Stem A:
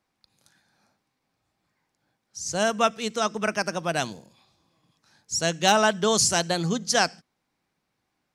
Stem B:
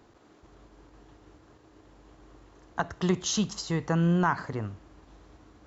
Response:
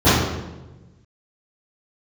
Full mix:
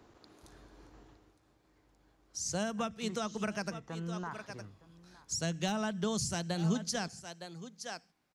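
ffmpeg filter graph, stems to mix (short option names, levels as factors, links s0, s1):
-filter_complex "[0:a]volume=0.841,asplit=3[s0][s1][s2];[s0]atrim=end=3.74,asetpts=PTS-STARTPTS,afade=t=out:st=3.736:d=0.004:c=hsin[s3];[s1]atrim=start=3.74:end=4.31,asetpts=PTS-STARTPTS,volume=0[s4];[s2]atrim=start=4.31,asetpts=PTS-STARTPTS,afade=t=in:d=0.004:c=hsin[s5];[s3][s4][s5]concat=n=3:v=0:a=1,asplit=2[s6][s7];[s7]volume=0.112[s8];[1:a]volume=0.75,afade=t=out:st=0.99:d=0.36:silence=0.223872,asplit=2[s9][s10];[s10]volume=0.0944[s11];[s8][s11]amix=inputs=2:normalize=0,aecho=0:1:912:1[s12];[s6][s9][s12]amix=inputs=3:normalize=0,acrossover=split=210[s13][s14];[s14]acompressor=threshold=0.02:ratio=8[s15];[s13][s15]amix=inputs=2:normalize=0"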